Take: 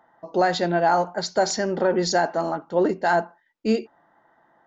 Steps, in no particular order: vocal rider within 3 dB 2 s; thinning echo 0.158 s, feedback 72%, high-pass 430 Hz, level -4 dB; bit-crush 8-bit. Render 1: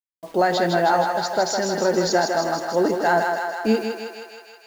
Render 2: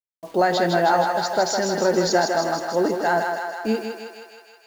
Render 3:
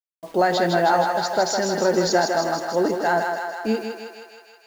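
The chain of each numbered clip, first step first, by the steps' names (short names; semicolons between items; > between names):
bit-crush > thinning echo > vocal rider; vocal rider > bit-crush > thinning echo; bit-crush > vocal rider > thinning echo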